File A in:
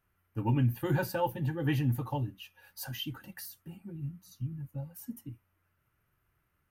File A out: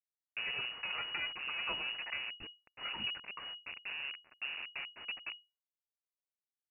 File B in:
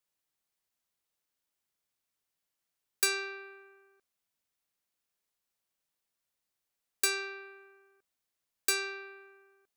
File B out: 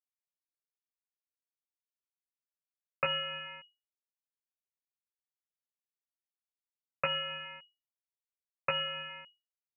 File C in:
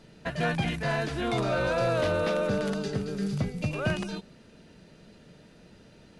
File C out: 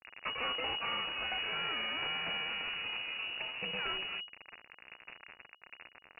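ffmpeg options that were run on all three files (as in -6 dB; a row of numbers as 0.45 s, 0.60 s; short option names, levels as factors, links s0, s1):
-filter_complex "[0:a]lowshelf=f=190:t=q:w=1.5:g=-9.5,acrossover=split=2100[s0][s1];[s0]acompressor=threshold=0.00891:ratio=12[s2];[s1]asoftclip=type=tanh:threshold=0.0891[s3];[s2][s3]amix=inputs=2:normalize=0,acrusher=bits=5:dc=4:mix=0:aa=0.000001,lowpass=f=2500:t=q:w=0.5098,lowpass=f=2500:t=q:w=0.6013,lowpass=f=2500:t=q:w=0.9,lowpass=f=2500:t=q:w=2.563,afreqshift=-2900,volume=2.37"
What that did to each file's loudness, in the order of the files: -5.0 LU, -3.0 LU, -6.5 LU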